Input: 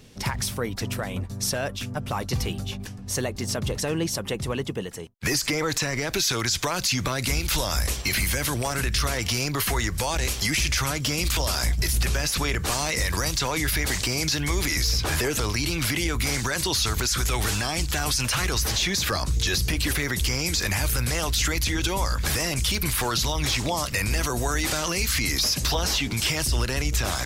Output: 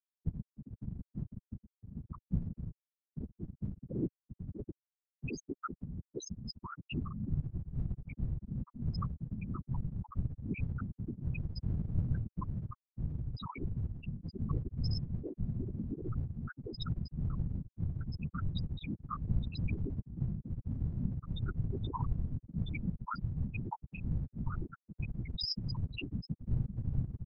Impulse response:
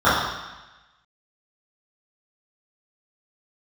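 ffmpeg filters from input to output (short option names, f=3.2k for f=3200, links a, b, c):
-filter_complex "[0:a]aecho=1:1:0.8:0.72,afftfilt=real='re*gte(hypot(re,im),0.447)':imag='im*gte(hypot(re,im),0.447)':win_size=1024:overlap=0.75,afftfilt=real='hypot(re,im)*cos(2*PI*random(0))':imag='hypot(re,im)*sin(2*PI*random(1))':win_size=512:overlap=0.75,acrossover=split=120|1300[a][b][c];[a]aeval=exprs='clip(val(0),-1,0.0119)':c=same[d];[d][b][c]amix=inputs=3:normalize=0,volume=-3.5dB"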